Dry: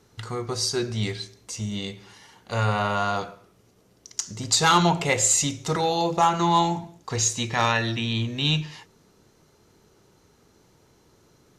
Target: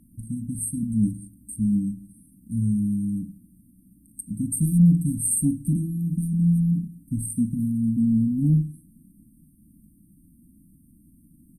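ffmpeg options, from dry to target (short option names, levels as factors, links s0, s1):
-af "afftfilt=real='re*(1-between(b*sr/4096,330,8300))':imag='im*(1-between(b*sr/4096,330,8300))':win_size=4096:overlap=0.75,acontrast=84,aecho=1:1:4.5:0.58"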